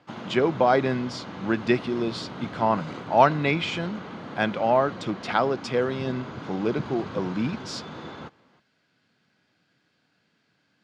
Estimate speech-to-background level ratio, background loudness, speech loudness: 12.5 dB, −38.0 LKFS, −25.5 LKFS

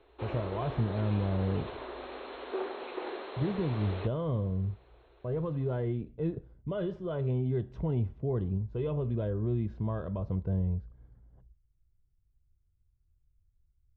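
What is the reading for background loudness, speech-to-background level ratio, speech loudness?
−41.0 LKFS, 8.0 dB, −33.0 LKFS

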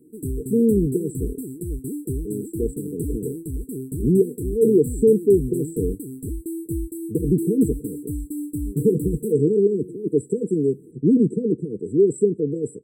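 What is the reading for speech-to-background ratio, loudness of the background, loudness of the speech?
9.5 dB, −31.0 LKFS, −21.5 LKFS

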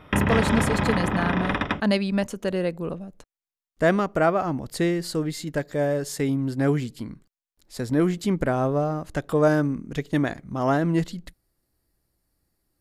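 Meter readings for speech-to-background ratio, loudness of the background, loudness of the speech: 0.0 dB, −25.0 LKFS, −25.0 LKFS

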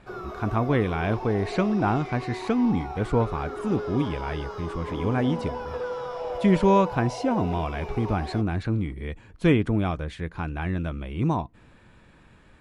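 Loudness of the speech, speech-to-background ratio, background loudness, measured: −26.0 LKFS, 8.5 dB, −34.5 LKFS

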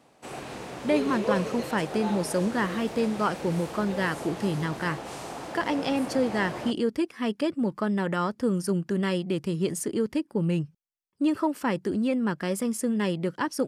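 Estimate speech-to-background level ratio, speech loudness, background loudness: 7.5 dB, −28.0 LKFS, −35.5 LKFS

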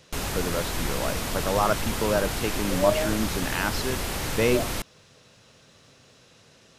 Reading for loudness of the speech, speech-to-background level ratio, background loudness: −28.0 LKFS, 1.5 dB, −29.5 LKFS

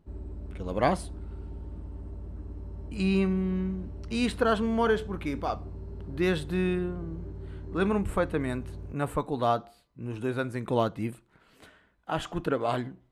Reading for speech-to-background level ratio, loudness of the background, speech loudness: 12.5 dB, −42.0 LKFS, −29.5 LKFS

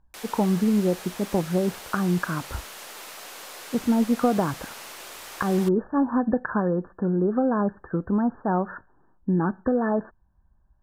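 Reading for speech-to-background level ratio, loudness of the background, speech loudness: 14.0 dB, −39.0 LKFS, −25.0 LKFS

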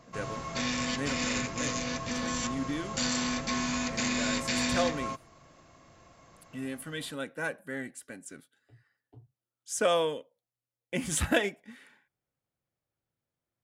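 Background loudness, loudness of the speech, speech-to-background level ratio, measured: −31.5 LKFS, −34.0 LKFS, −2.5 dB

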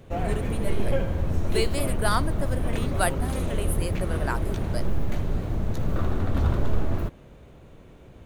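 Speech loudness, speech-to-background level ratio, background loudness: −32.0 LKFS, −3.0 dB, −29.0 LKFS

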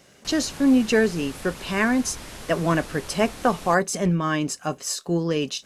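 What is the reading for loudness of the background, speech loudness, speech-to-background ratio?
−39.0 LKFS, −23.5 LKFS, 15.5 dB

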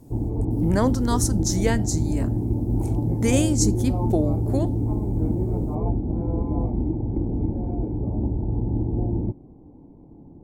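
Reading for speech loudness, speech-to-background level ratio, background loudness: −25.5 LKFS, 0.0 dB, −25.5 LKFS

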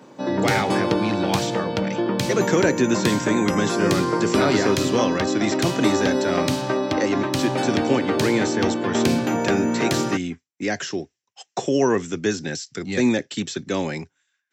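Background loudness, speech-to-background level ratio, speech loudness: −23.5 LKFS, −1.0 dB, −24.5 LKFS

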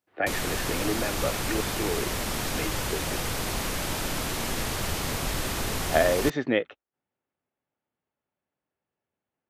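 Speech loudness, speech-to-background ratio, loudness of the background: −29.5 LKFS, 0.0 dB, −29.5 LKFS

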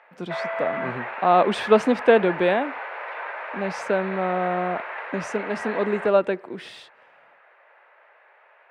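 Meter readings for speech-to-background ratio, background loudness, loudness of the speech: 9.5 dB, −32.5 LKFS, −23.0 LKFS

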